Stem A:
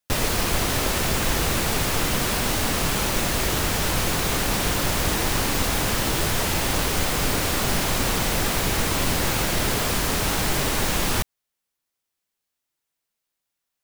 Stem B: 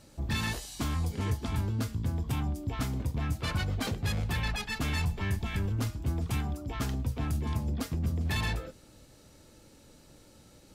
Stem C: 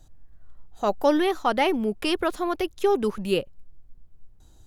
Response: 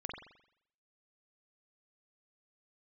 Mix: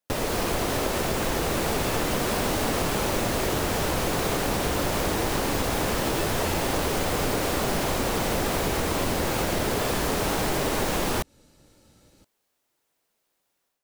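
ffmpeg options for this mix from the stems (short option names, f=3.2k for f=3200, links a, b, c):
-filter_complex "[0:a]equalizer=f=480:t=o:w=2.5:g=8.5,dynaudnorm=f=210:g=3:m=11.5dB,volume=-6dB[a];[1:a]adelay=1500,volume=-1.5dB[b];[a][b]amix=inputs=2:normalize=0,acompressor=threshold=-24dB:ratio=3"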